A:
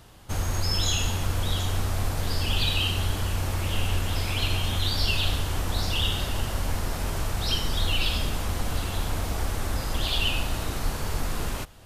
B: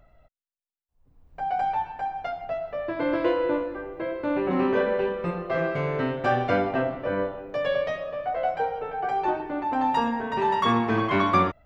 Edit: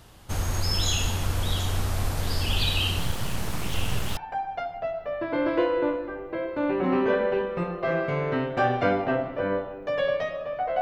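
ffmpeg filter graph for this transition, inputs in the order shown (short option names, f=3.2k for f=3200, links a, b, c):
-filter_complex "[0:a]asettb=1/sr,asplit=3[a][b][c];[a]atrim=end=2.994[d];[b]atrim=start=2.99:end=4.17,asetpts=PTS-STARTPTS,afade=t=in:d=0.004:c=qsin,afade=t=out:st=1.176:d=0.004:c=qsin,aeval=exprs='abs(val(0))':c=same[e];[c]atrim=start=4.166[f];[d][e]acrossfade=d=0.004:c1=hsin:c2=qsin[g];[g][f]acrossfade=d=0.004:c1=qsin:c2=hsin,apad=whole_dur=10.81,atrim=end=10.81,atrim=end=4.172[h];[1:a]atrim=start=1.838:end=8.48[i];[h][i]acrossfade=d=0.004:c1=hsin:c2=hsin"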